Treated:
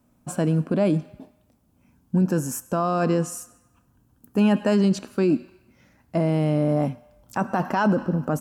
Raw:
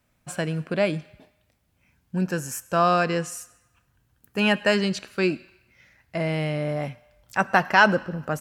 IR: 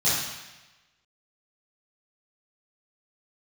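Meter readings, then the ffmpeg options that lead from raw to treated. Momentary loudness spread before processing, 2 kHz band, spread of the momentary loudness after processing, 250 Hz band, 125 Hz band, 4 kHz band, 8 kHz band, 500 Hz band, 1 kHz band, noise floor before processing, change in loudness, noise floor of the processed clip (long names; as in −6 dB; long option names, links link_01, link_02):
15 LU, −11.0 dB, 9 LU, +6.0 dB, +5.0 dB, −9.0 dB, +1.0 dB, +0.5 dB, −4.0 dB, −69 dBFS, +0.5 dB, −63 dBFS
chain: -af "equalizer=frequency=250:width_type=o:width=1:gain=11,equalizer=frequency=1000:width_type=o:width=1:gain=4,equalizer=frequency=2000:width_type=o:width=1:gain=-10,equalizer=frequency=4000:width_type=o:width=1:gain=-5,alimiter=limit=-15dB:level=0:latency=1:release=28,volume=2.5dB"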